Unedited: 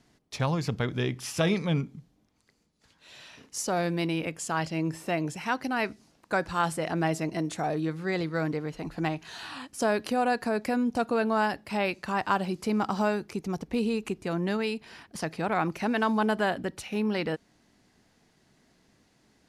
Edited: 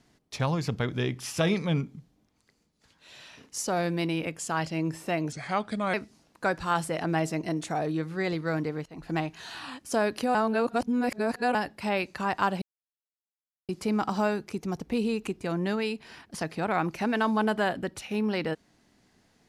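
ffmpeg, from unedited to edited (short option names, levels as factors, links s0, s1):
-filter_complex "[0:a]asplit=7[s0][s1][s2][s3][s4][s5][s6];[s0]atrim=end=5.324[s7];[s1]atrim=start=5.32:end=5.82,asetpts=PTS-STARTPTS,asetrate=35721,aresample=44100,atrim=end_sample=27222,asetpts=PTS-STARTPTS[s8];[s2]atrim=start=5.816:end=8.74,asetpts=PTS-STARTPTS,afade=t=out:st=2.92:d=0.004:c=hsin:silence=0.0891251[s9];[s3]atrim=start=8.74:end=10.232,asetpts=PTS-STARTPTS,afade=t=in:d=0.26:silence=0.0891251[s10];[s4]atrim=start=10.228:end=11.432,asetpts=PTS-STARTPTS,areverse[s11];[s5]atrim=start=11.428:end=12.5,asetpts=PTS-STARTPTS,afade=t=out:st=1.068:d=0.004:c=hsin,apad=pad_dur=1.07[s12];[s6]atrim=start=12.5,asetpts=PTS-STARTPTS,afade=t=in:d=0.004:c=hsin[s13];[s7][s8]acrossfade=d=0.004:c1=hsin:c2=hsin[s14];[s9][s10]concat=n=2:v=0:a=1[s15];[s14][s15]acrossfade=d=0.004:c1=hsin:c2=hsin[s16];[s16][s11]acrossfade=d=0.004:c1=hsin:c2=hsin[s17];[s12][s13]concat=n=2:v=0:a=1[s18];[s17][s18]acrossfade=d=0.004:c1=hsin:c2=hsin"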